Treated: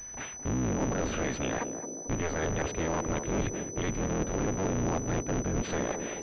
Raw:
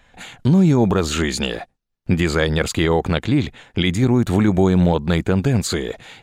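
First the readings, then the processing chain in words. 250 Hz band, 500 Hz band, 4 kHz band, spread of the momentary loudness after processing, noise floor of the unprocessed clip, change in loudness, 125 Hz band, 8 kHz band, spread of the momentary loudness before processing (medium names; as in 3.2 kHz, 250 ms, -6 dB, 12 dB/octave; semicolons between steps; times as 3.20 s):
-14.5 dB, -11.0 dB, -18.0 dB, 4 LU, -71 dBFS, -13.0 dB, -15.0 dB, -2.0 dB, 9 LU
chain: cycle switcher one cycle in 3, inverted; reverse; compression 6:1, threshold -27 dBFS, peak gain reduction 15.5 dB; reverse; saturation -22 dBFS, distortion -19 dB; band-passed feedback delay 220 ms, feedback 73%, band-pass 350 Hz, level -5.5 dB; class-D stage that switches slowly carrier 6 kHz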